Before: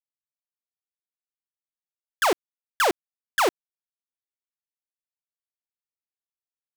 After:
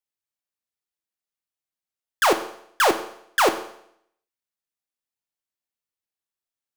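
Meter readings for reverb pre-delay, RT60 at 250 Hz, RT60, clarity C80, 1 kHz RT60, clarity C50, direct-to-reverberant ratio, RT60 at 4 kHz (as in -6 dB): 9 ms, 0.70 s, 0.70 s, 15.0 dB, 0.70 s, 12.0 dB, 7.5 dB, 0.65 s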